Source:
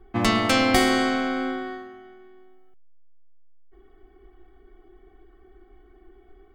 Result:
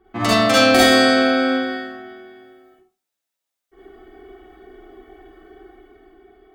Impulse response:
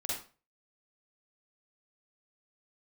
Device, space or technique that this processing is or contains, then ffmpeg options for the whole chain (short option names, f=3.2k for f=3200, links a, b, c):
far laptop microphone: -filter_complex "[1:a]atrim=start_sample=2205[a];[0:a][a]afir=irnorm=-1:irlink=0,highpass=f=190:p=1,dynaudnorm=f=220:g=9:m=8dB,volume=3dB"